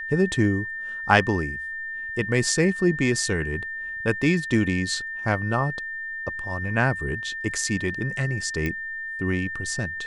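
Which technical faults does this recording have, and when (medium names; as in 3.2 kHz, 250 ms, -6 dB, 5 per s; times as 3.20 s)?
whine 1.8 kHz -30 dBFS
8.66 s: pop -15 dBFS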